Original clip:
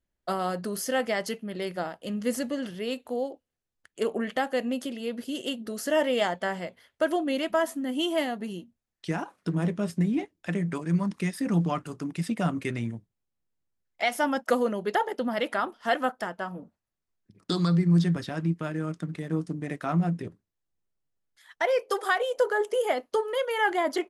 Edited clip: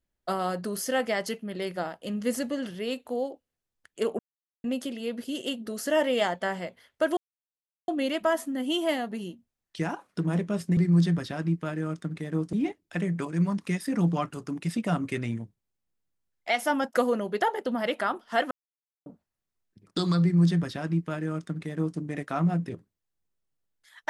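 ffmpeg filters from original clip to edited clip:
ffmpeg -i in.wav -filter_complex "[0:a]asplit=8[link_01][link_02][link_03][link_04][link_05][link_06][link_07][link_08];[link_01]atrim=end=4.19,asetpts=PTS-STARTPTS,afade=type=out:start_time=4.186:duration=0.004:curve=hsin[link_09];[link_02]atrim=start=4.19:end=4.64,asetpts=PTS-STARTPTS,volume=0[link_10];[link_03]atrim=start=4.64:end=7.17,asetpts=PTS-STARTPTS,afade=type=in:duration=0.004:curve=hsin,afade=type=out:start_time=2.526:duration=0.004:curve=hsin,apad=pad_dur=0.71[link_11];[link_04]atrim=start=7.17:end=10.062,asetpts=PTS-STARTPTS,afade=type=in:duration=0.004:curve=hsin[link_12];[link_05]atrim=start=17.748:end=19.512[link_13];[link_06]atrim=start=10.058:end=16.04,asetpts=PTS-STARTPTS,afade=type=out:start_time=5.978:duration=0.004:curve=hsin[link_14];[link_07]atrim=start=16.04:end=16.59,asetpts=PTS-STARTPTS,volume=0[link_15];[link_08]atrim=start=16.59,asetpts=PTS-STARTPTS,afade=type=in:duration=0.004:curve=hsin[link_16];[link_09][link_10][link_11][link_12]concat=n=4:v=0:a=1[link_17];[link_17][link_13]acrossfade=duration=0.004:curve1=hsin:curve2=hsin[link_18];[link_14][link_15][link_16]concat=n=3:v=0:a=1[link_19];[link_18][link_19]acrossfade=duration=0.004:curve1=hsin:curve2=hsin" out.wav

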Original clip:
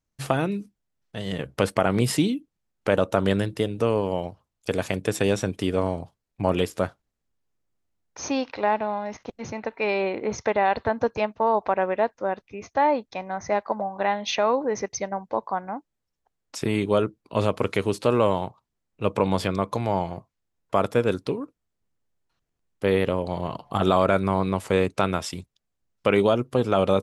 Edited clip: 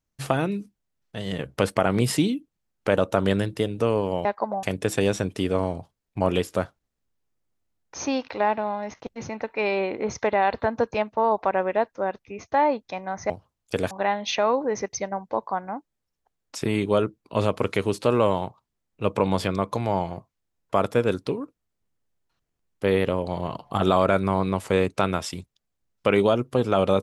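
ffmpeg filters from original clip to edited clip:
ffmpeg -i in.wav -filter_complex "[0:a]asplit=5[link_01][link_02][link_03][link_04][link_05];[link_01]atrim=end=4.252[link_06];[link_02]atrim=start=13.528:end=13.912[link_07];[link_03]atrim=start=4.858:end=13.532[link_08];[link_04]atrim=start=4.248:end=4.862[link_09];[link_05]atrim=start=13.908[link_10];[link_06][link_07]acrossfade=duration=0.004:curve1=hsin:curve2=hsin[link_11];[link_11][link_08]acrossfade=duration=0.004:curve1=hsin:curve2=hsin[link_12];[link_12][link_09]acrossfade=duration=0.004:curve1=hsin:curve2=hsin[link_13];[link_13][link_10]acrossfade=duration=0.004:curve1=hsin:curve2=hsin" out.wav

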